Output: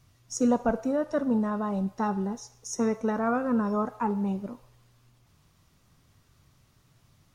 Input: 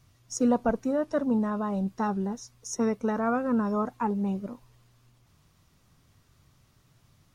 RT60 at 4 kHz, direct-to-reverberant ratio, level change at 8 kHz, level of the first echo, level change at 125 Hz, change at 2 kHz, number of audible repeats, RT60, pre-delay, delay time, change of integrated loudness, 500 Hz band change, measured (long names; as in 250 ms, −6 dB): 0.70 s, 12.0 dB, +0.5 dB, no echo audible, 0.0 dB, +0.5 dB, no echo audible, 0.80 s, 8 ms, no echo audible, 0.0 dB, 0.0 dB